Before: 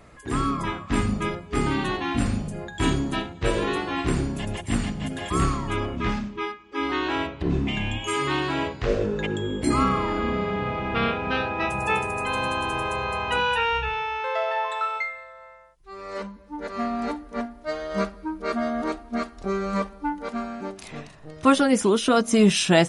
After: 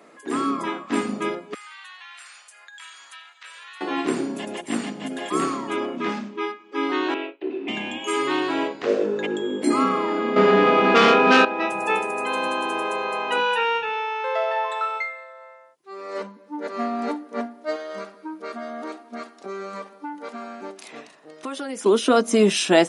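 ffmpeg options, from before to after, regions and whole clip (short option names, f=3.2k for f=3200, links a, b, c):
-filter_complex "[0:a]asettb=1/sr,asplit=3[a][b][c];[a]atrim=end=1.544[d];[b]atrim=start=1.54:end=3.81,asetpts=PTS-STARTPTS,afade=t=in:d=0.004:c=qsin,afade=t=out:st=2.266:d=0.004:c=qsin,highpass=f=1.3k:w=0.5412,highpass=f=1.3k:w=1.3066,acompressor=threshold=-41dB:ratio=4:attack=3.2:release=140:knee=1:detection=peak[e];[c]atrim=start=3.806[f];[d][e]acrossfade=d=0.004:c1=hsin:c2=qsin[g];[g][f]acrossfade=d=0.004:c1=qsin:c2=hsin,asettb=1/sr,asplit=3[h][i][j];[h]atrim=end=7.144[k];[i]atrim=start=7.14:end=7.68,asetpts=PTS-STARTPTS,afade=t=in:d=0.004:c=qsin,afade=t=out:st=0.536:d=0.004:c=qsin,acompressor=threshold=-26dB:ratio=4:attack=3.2:release=140:knee=1:detection=peak,agate=range=-33dB:threshold=-28dB:ratio=3:release=100:detection=peak,highpass=f=290:w=0.5412,highpass=f=290:w=1.3066,equalizer=f=370:t=q:w=4:g=8,equalizer=f=1.1k:t=q:w=4:g=-5,equalizer=f=2.6k:t=q:w=4:g=10,lowpass=f=4k:w=0.5412,lowpass=f=4k:w=1.3066[l];[j]atrim=start=7.676[m];[k][l]acrossfade=d=0.004:c1=hsin:c2=qsin[n];[n][m]acrossfade=d=0.004:c1=qsin:c2=hsin,asettb=1/sr,asplit=3[o][p][q];[o]atrim=end=10.364[r];[p]atrim=start=10.36:end=11.45,asetpts=PTS-STARTPTS,afade=t=in:d=0.004:c=qsin,afade=t=out:st=1.086:d=0.004:c=qsin,aeval=exprs='0.266*sin(PI/2*2.24*val(0)/0.266)':c=same,asplit=2[s][t];[t]adelay=20,volume=-7dB[u];[s][u]amix=inputs=2:normalize=0,atrim=end_sample=48069[v];[q]atrim=start=11.446[w];[r][v]acrossfade=d=0.004:c1=hsin:c2=qsin[x];[x][w]acrossfade=d=0.004:c1=qsin:c2=hsin,asettb=1/sr,asplit=3[y][z][aa];[y]atrim=end=17.764[ab];[z]atrim=start=17.76:end=21.86,asetpts=PTS-STARTPTS,afade=t=in:d=0.004:c=qsin,afade=t=out:st=4.096:d=0.004:c=qsin,equalizer=f=220:w=0.36:g=-6,acompressor=threshold=-31dB:ratio=4:attack=3.2:release=140:knee=1:detection=peak[ac];[aa]atrim=start=21.856[ad];[ab][ac]acrossfade=d=0.004:c1=hsin:c2=qsin[ae];[ae][ad]acrossfade=d=0.004:c1=qsin:c2=hsin,highpass=f=240:w=0.5412,highpass=f=240:w=1.3066,equalizer=f=330:t=o:w=2.4:g=4"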